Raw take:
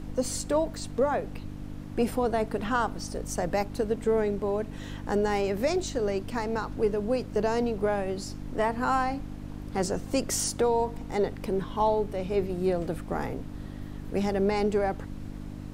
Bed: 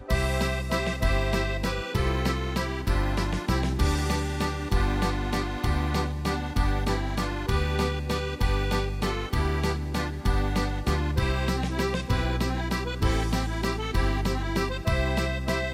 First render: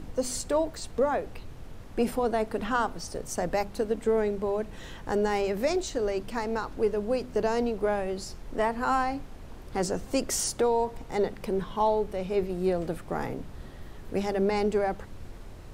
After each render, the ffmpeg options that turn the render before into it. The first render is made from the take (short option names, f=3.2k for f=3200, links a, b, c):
-af "bandreject=f=50:t=h:w=4,bandreject=f=100:t=h:w=4,bandreject=f=150:t=h:w=4,bandreject=f=200:t=h:w=4,bandreject=f=250:t=h:w=4,bandreject=f=300:t=h:w=4"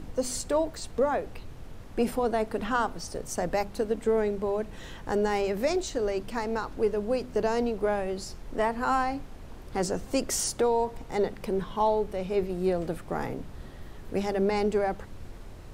-af anull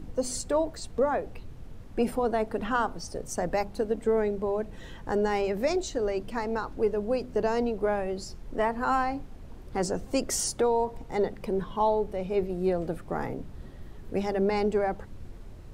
-af "afftdn=nr=6:nf=-44"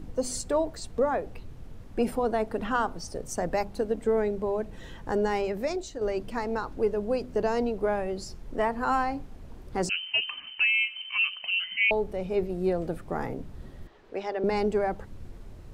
-filter_complex "[0:a]asettb=1/sr,asplit=3[a][b][c];[a]atrim=end=9.894[d];[b]atrim=start=9.89:end=11.91,asetpts=PTS-STARTPTS,afade=t=in:d=0.004:c=qsin,afade=t=out:st=2.016:d=0.004:c=qsin,lowpass=f=2.6k:t=q:w=0.5098,lowpass=f=2.6k:t=q:w=0.6013,lowpass=f=2.6k:t=q:w=0.9,lowpass=f=2.6k:t=q:w=2.563,afreqshift=-3100[e];[c]atrim=start=11.906[f];[d][e]acrossfade=d=0.004:c1=hsin:c2=qsin[g];[g][f]acrossfade=d=0.004:c1=qsin:c2=hsin,asettb=1/sr,asplit=3[h][i][j];[h]atrim=end=13.874[k];[i]atrim=start=13.87:end=14.44,asetpts=PTS-STARTPTS,afade=t=in:d=0.004:c=qsin,afade=t=out:st=0.566:d=0.004:c=qsin,acrossover=split=350 5500:gain=0.1 1 0.126[l][m][n];[l][m][n]amix=inputs=3:normalize=0[o];[j]atrim=start=14.436[p];[k][o]acrossfade=d=0.004:c1=hsin:c2=qsin[q];[q][p]acrossfade=d=0.004:c1=qsin:c2=hsin,asplit=2[r][s];[r]atrim=end=6.01,asetpts=PTS-STARTPTS,afade=t=out:st=5.29:d=0.72:silence=0.421697[t];[s]atrim=start=6.01,asetpts=PTS-STARTPTS,afade=t=in:d=0.004:c=hsin:silence=0.421697[u];[t][u]concat=n=2:v=0:a=1"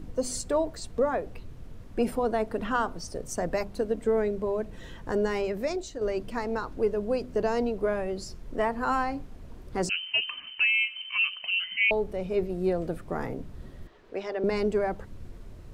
-af "bandreject=f=820:w=12"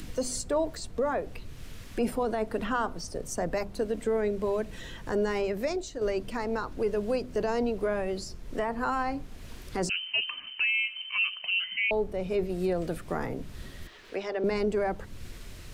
-filter_complex "[0:a]acrossover=split=120|1700[a][b][c];[c]acompressor=mode=upward:threshold=-39dB:ratio=2.5[d];[a][b][d]amix=inputs=3:normalize=0,alimiter=limit=-19.5dB:level=0:latency=1:release=17"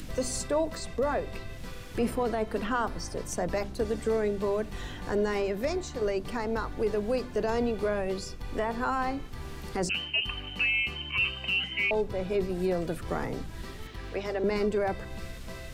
-filter_complex "[1:a]volume=-16.5dB[a];[0:a][a]amix=inputs=2:normalize=0"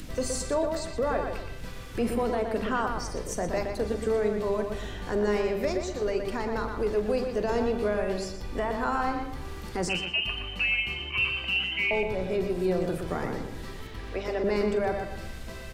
-filter_complex "[0:a]asplit=2[a][b];[b]adelay=43,volume=-13dB[c];[a][c]amix=inputs=2:normalize=0,asplit=2[d][e];[e]adelay=120,lowpass=f=3.6k:p=1,volume=-5dB,asplit=2[f][g];[g]adelay=120,lowpass=f=3.6k:p=1,volume=0.37,asplit=2[h][i];[i]adelay=120,lowpass=f=3.6k:p=1,volume=0.37,asplit=2[j][k];[k]adelay=120,lowpass=f=3.6k:p=1,volume=0.37,asplit=2[l][m];[m]adelay=120,lowpass=f=3.6k:p=1,volume=0.37[n];[d][f][h][j][l][n]amix=inputs=6:normalize=0"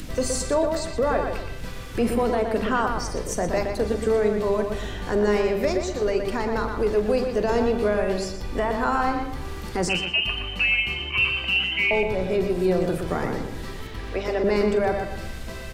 -af "volume=5dB"